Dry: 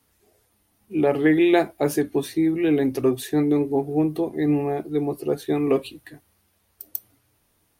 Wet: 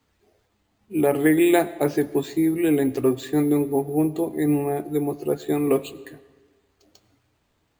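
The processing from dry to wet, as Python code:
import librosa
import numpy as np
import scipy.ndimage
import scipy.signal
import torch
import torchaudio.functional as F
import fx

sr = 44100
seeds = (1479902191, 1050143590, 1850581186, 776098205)

y = np.repeat(scipy.signal.resample_poly(x, 1, 4), 4)[:len(x)]
y = fx.rev_freeverb(y, sr, rt60_s=1.4, hf_ratio=0.75, predelay_ms=60, drr_db=18.0)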